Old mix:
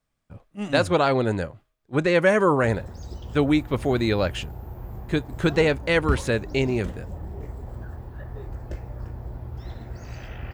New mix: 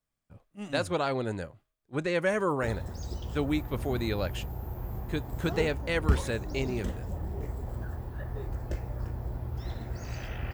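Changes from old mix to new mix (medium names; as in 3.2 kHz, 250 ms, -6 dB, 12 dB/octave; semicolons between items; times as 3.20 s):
speech -9.0 dB; master: add treble shelf 6.8 kHz +7 dB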